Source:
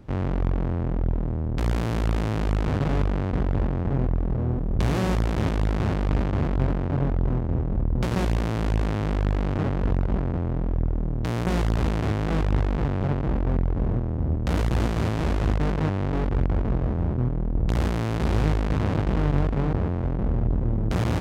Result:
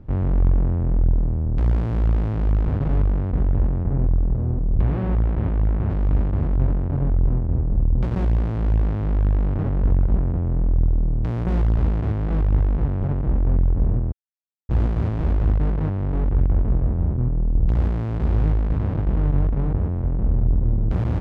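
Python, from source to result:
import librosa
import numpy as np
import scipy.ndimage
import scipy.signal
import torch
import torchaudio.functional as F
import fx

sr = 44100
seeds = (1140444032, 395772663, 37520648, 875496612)

y = fx.lowpass(x, sr, hz=2800.0, slope=12, at=(3.83, 5.9))
y = fx.edit(y, sr, fx.silence(start_s=14.12, length_s=0.57), tone=tone)
y = fx.rider(y, sr, range_db=10, speed_s=2.0)
y = fx.lowpass(y, sr, hz=1300.0, slope=6)
y = fx.low_shelf(y, sr, hz=110.0, db=11.0)
y = F.gain(torch.from_numpy(y), -3.0).numpy()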